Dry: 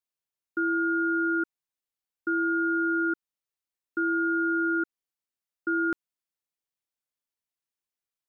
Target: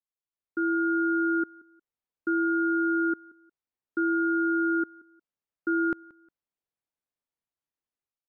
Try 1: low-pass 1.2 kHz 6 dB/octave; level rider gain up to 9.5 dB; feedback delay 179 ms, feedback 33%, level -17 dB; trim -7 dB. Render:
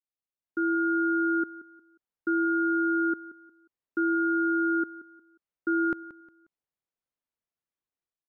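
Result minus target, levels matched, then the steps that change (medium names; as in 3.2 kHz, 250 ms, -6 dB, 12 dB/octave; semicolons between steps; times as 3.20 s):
echo-to-direct +7 dB
change: feedback delay 179 ms, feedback 33%, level -24 dB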